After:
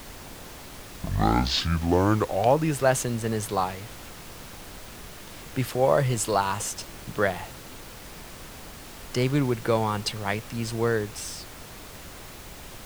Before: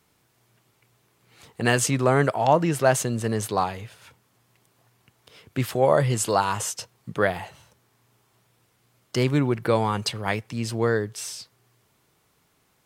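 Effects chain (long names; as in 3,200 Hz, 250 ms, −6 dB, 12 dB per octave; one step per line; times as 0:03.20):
turntable start at the beginning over 2.81 s
background noise pink −40 dBFS
level −2 dB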